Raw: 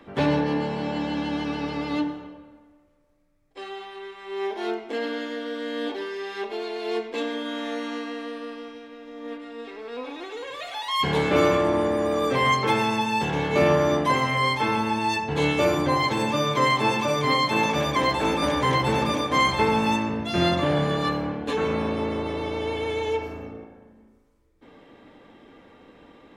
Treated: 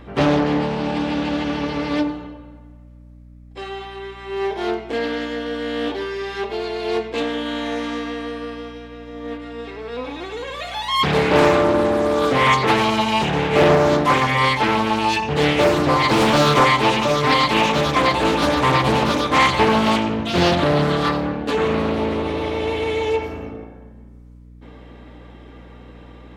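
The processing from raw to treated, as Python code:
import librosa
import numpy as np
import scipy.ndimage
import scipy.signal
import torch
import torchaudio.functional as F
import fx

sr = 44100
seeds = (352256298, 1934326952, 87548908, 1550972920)

y = fx.power_curve(x, sr, exponent=0.7, at=(16.09, 16.63))
y = fx.add_hum(y, sr, base_hz=60, snr_db=23)
y = fx.doppler_dist(y, sr, depth_ms=0.46)
y = F.gain(torch.from_numpy(y), 5.5).numpy()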